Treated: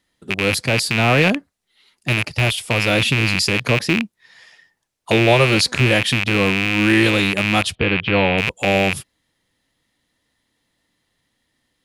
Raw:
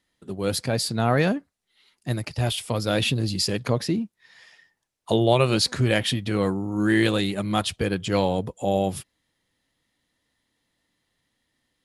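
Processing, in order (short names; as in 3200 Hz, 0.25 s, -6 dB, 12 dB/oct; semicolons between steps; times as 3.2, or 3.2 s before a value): rattling part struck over -32 dBFS, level -11 dBFS; 7.75–8.38 inverse Chebyshev low-pass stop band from 6800 Hz, stop band 40 dB; gain +4.5 dB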